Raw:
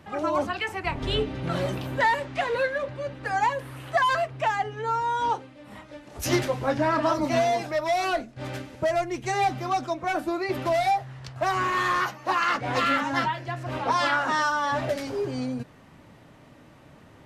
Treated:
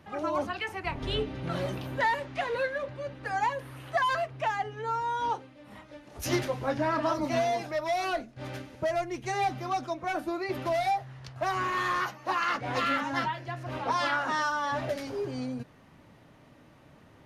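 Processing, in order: notch 7700 Hz, Q 8.3; gain -4.5 dB

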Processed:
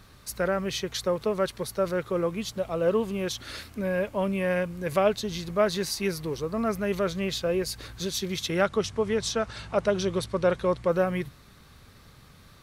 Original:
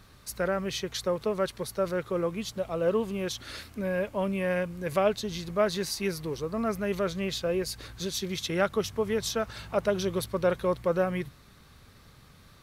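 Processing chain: 8.63–10.89 LPF 9500 Hz 24 dB/oct; gain +2 dB

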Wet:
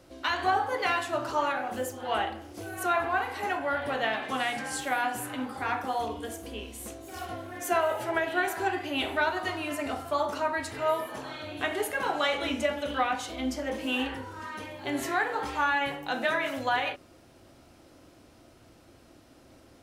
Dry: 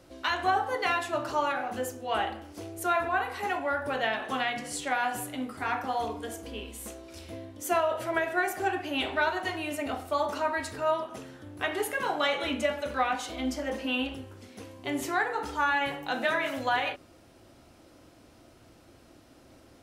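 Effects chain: on a send at -12 dB: speed mistake 44.1 kHz file played as 48 kHz + reverb, pre-delay 3 ms

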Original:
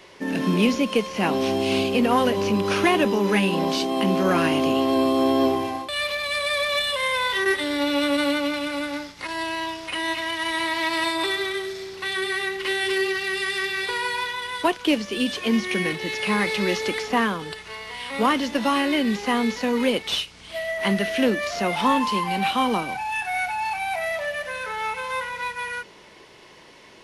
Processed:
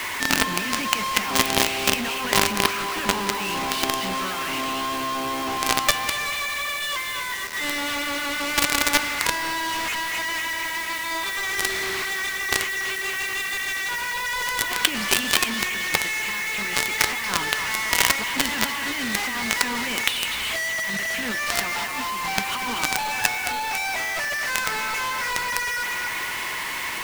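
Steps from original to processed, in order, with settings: graphic EQ 125/500/1000/2000/4000/8000 Hz -10/-11/+8/+10/+3/-10 dB; negative-ratio compressor -25 dBFS, ratio -0.5; thinning echo 0.24 s, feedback 51%, high-pass 580 Hz, level -9 dB; companded quantiser 2-bit; gain -1 dB

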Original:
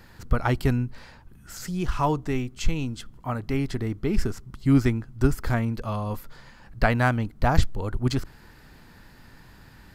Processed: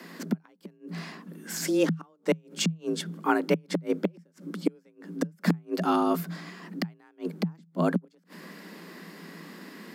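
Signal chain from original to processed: flipped gate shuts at -16 dBFS, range -42 dB; frequency shift +160 Hz; low shelf 210 Hz -5.5 dB; gain +6 dB

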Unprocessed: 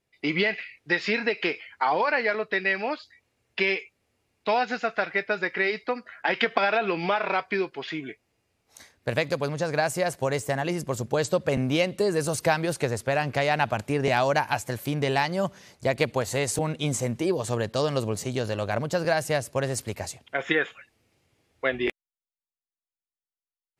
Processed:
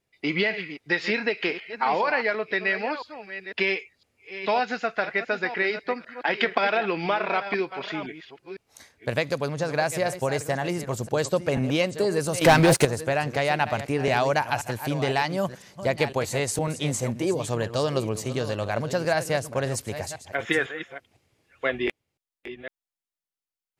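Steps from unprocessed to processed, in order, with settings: reverse delay 0.504 s, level -11.5 dB; 12.41–12.85 sample leveller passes 3

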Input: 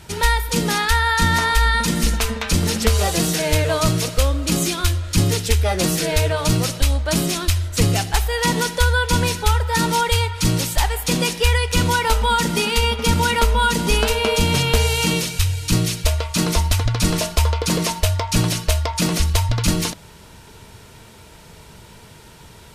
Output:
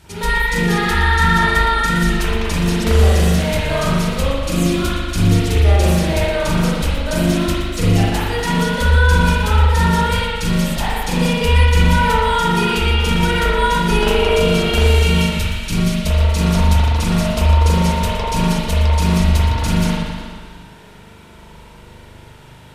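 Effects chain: spring tank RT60 1.6 s, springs 40 ms, chirp 50 ms, DRR -7.5 dB; warbling echo 0.119 s, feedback 61%, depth 115 cents, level -12 dB; gain -6 dB

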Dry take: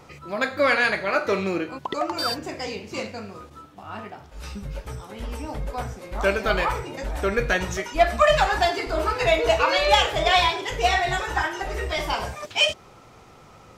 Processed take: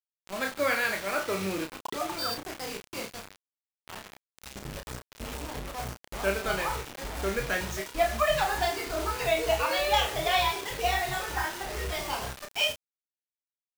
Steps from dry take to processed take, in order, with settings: bit-crush 5-bit; doubler 31 ms -5.5 dB; gain -8 dB

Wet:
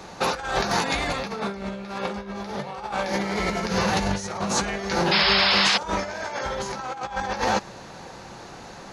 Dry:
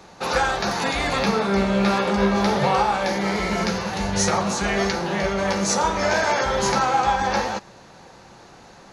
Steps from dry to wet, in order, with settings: negative-ratio compressor -26 dBFS, ratio -0.5; painted sound noise, 5.11–5.78, 670–5400 Hz -20 dBFS

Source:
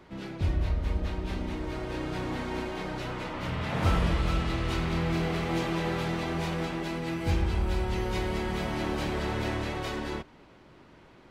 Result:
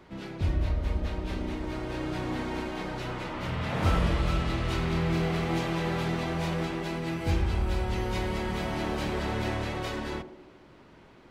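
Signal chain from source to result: narrowing echo 74 ms, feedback 68%, band-pass 400 Hz, level -9 dB

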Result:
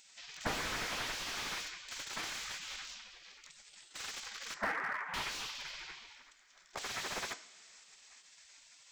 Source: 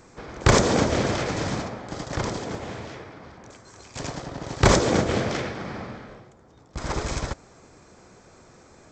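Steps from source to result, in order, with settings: spectral gate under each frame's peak -20 dB weak; 4.54–5.14 Chebyshev band-pass 130–1900 Hz, order 4; two-slope reverb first 0.56 s, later 3.6 s, from -18 dB, DRR 11.5 dB; slew limiter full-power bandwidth 27 Hz; gain +3.5 dB

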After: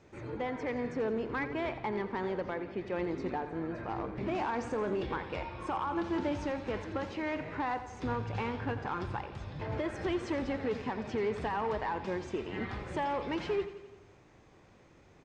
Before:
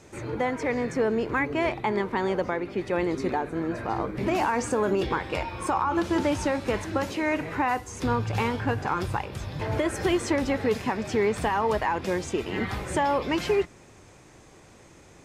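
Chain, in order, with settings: hard clip -19.5 dBFS, distortion -19 dB; air absorption 140 m; on a send: feedback echo 86 ms, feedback 60%, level -13 dB; on the sum: gain -7.5 dB

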